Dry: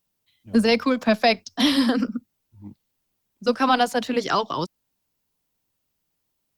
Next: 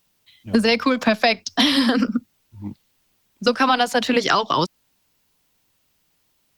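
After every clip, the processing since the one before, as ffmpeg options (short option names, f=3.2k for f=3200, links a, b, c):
-af "equalizer=f=2.7k:w=0.43:g=5,acompressor=threshold=-23dB:ratio=6,volume=8.5dB"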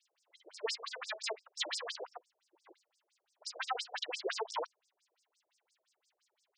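-af "aeval=exprs='if(lt(val(0),0),0.447*val(0),val(0))':c=same,aeval=exprs='(tanh(25.1*val(0)+0.45)-tanh(0.45))/25.1':c=same,afftfilt=real='re*between(b*sr/1024,470*pow(6900/470,0.5+0.5*sin(2*PI*5.8*pts/sr))/1.41,470*pow(6900/470,0.5+0.5*sin(2*PI*5.8*pts/sr))*1.41)':imag='im*between(b*sr/1024,470*pow(6900/470,0.5+0.5*sin(2*PI*5.8*pts/sr))/1.41,470*pow(6900/470,0.5+0.5*sin(2*PI*5.8*pts/sr))*1.41)':win_size=1024:overlap=0.75,volume=3dB"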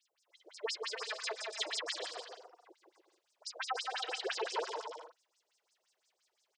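-af "aecho=1:1:170|289|372.3|430.6|471.4:0.631|0.398|0.251|0.158|0.1,volume=-1dB"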